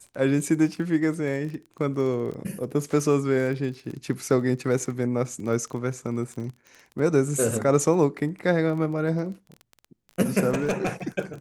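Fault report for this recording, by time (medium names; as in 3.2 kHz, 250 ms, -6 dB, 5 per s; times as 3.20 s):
crackle 22 per s -33 dBFS
10.50–10.89 s: clipped -19.5 dBFS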